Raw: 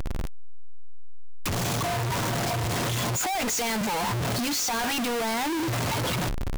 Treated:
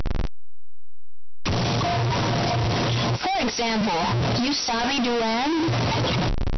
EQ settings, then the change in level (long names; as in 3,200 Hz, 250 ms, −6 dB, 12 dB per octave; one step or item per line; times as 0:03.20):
dynamic equaliser 1,600 Hz, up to −4 dB, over −44 dBFS, Q 1.1
linear-phase brick-wall low-pass 5,900 Hz
+5.5 dB